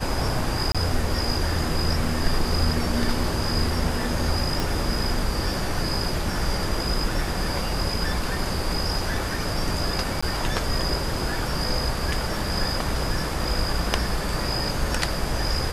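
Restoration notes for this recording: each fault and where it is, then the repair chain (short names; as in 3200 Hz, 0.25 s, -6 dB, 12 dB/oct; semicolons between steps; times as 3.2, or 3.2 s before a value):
0.72–0.75 gap 26 ms
4.6 pop
10.21–10.22 gap 15 ms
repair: de-click; interpolate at 0.72, 26 ms; interpolate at 10.21, 15 ms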